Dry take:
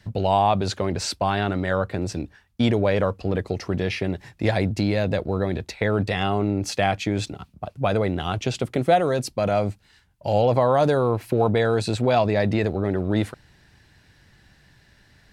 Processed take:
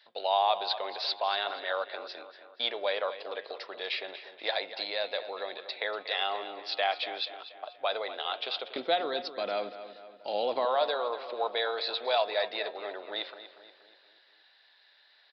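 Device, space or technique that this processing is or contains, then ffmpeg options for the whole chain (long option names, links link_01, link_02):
musical greeting card: -filter_complex "[0:a]aresample=11025,aresample=44100,highpass=frequency=550:width=0.5412,highpass=frequency=550:width=1.3066,equalizer=frequency=3700:width_type=o:width=0.37:gain=12,bandreject=frequency=180.1:width_type=h:width=4,bandreject=frequency=360.2:width_type=h:width=4,bandreject=frequency=540.3:width_type=h:width=4,bandreject=frequency=720.4:width_type=h:width=4,bandreject=frequency=900.5:width_type=h:width=4,bandreject=frequency=1080.6:width_type=h:width=4,bandreject=frequency=1260.7:width_type=h:width=4,bandreject=frequency=1440.8:width_type=h:width=4,bandreject=frequency=1620.9:width_type=h:width=4,bandreject=frequency=1801:width_type=h:width=4,bandreject=frequency=1981.1:width_type=h:width=4,bandreject=frequency=2161.2:width_type=h:width=4,bandreject=frequency=2341.3:width_type=h:width=4,bandreject=frequency=2521.4:width_type=h:width=4,bandreject=frequency=2701.5:width_type=h:width=4,bandreject=frequency=2881.6:width_type=h:width=4,bandreject=frequency=3061.7:width_type=h:width=4,bandreject=frequency=3241.8:width_type=h:width=4,bandreject=frequency=3421.9:width_type=h:width=4,bandreject=frequency=3602:width_type=h:width=4,asettb=1/sr,asplit=3[link_01][link_02][link_03];[link_01]atrim=end=8.764[link_04];[link_02]atrim=start=8.76:end=10.65,asetpts=PTS-STARTPTS,afade=type=in:duration=0.004:curve=qsin,afade=type=out:start_time=1.886:duration=0.004:curve=qsin,lowshelf=frequency=390:width_type=q:width=1.5:gain=14[link_05];[link_03]atrim=start=10.646[link_06];[link_04][link_05]acrossfade=duration=0.004:curve1=hsin:curve2=qsin[link_07];[link_07][link_06]acrossfade=duration=0.004:curve1=qsin:curve2=hsin,asplit=2[link_08][link_09];[link_09]adelay=239,lowpass=frequency=4100:poles=1,volume=-12dB,asplit=2[link_10][link_11];[link_11]adelay=239,lowpass=frequency=4100:poles=1,volume=0.52,asplit=2[link_12][link_13];[link_13]adelay=239,lowpass=frequency=4100:poles=1,volume=0.52,asplit=2[link_14][link_15];[link_15]adelay=239,lowpass=frequency=4100:poles=1,volume=0.52,asplit=2[link_16][link_17];[link_17]adelay=239,lowpass=frequency=4100:poles=1,volume=0.52[link_18];[link_08][link_10][link_12][link_14][link_16][link_18]amix=inputs=6:normalize=0,volume=-6dB"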